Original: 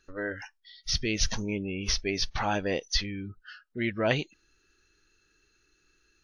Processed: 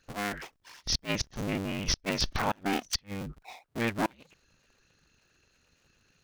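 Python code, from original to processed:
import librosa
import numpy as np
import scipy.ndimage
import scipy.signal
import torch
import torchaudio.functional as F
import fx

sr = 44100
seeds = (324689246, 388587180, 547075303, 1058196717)

y = fx.cycle_switch(x, sr, every=2, mode='inverted')
y = fx.gate_flip(y, sr, shuts_db=-15.0, range_db=-33)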